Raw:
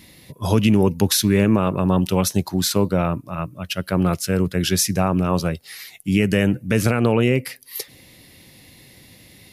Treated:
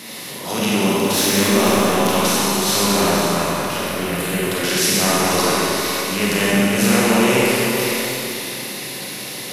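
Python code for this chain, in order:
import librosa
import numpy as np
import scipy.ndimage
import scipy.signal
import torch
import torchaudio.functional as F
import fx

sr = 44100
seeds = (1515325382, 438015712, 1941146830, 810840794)

y = fx.bin_compress(x, sr, power=0.6)
y = scipy.signal.sosfilt(scipy.signal.butter(4, 130.0, 'highpass', fs=sr, output='sos'), y)
y = fx.low_shelf(y, sr, hz=310.0, db=-10.0)
y = fx.transient(y, sr, attack_db=-11, sustain_db=6)
y = fx.overload_stage(y, sr, gain_db=14.0, at=(0.9, 1.56))
y = fx.fixed_phaser(y, sr, hz=2400.0, stages=4, at=(3.82, 4.43))
y = y + 10.0 ** (-10.0 / 20.0) * np.pad(y, (int(494 * sr / 1000.0), 0))[:len(y)]
y = fx.rev_schroeder(y, sr, rt60_s=3.0, comb_ms=31, drr_db=-6.5)
y = y * librosa.db_to_amplitude(-2.5)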